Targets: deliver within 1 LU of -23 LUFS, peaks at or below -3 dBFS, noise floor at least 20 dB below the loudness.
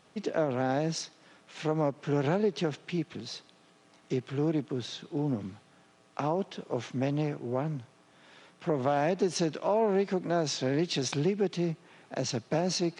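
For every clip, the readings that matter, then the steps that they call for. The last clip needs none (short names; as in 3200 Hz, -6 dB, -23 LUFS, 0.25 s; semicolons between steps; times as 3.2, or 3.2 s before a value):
loudness -31.0 LUFS; peak -15.5 dBFS; loudness target -23.0 LUFS
-> gain +8 dB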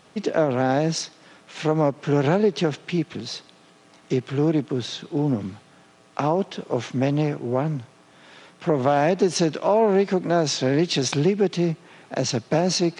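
loudness -23.0 LUFS; peak -7.5 dBFS; noise floor -54 dBFS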